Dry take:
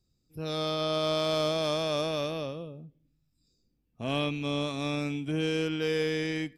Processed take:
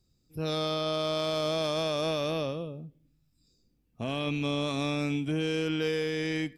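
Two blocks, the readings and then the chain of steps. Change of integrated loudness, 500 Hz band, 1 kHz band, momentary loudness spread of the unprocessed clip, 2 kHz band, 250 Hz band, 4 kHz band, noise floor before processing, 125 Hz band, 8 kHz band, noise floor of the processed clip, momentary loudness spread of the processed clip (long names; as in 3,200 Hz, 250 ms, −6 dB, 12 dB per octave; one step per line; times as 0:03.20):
0.0 dB, −0.5 dB, −0.5 dB, 11 LU, 0.0 dB, +0.5 dB, −0.5 dB, −75 dBFS, +0.5 dB, 0.0 dB, −72 dBFS, 8 LU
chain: brickwall limiter −25 dBFS, peak gain reduction 7.5 dB
level +3.5 dB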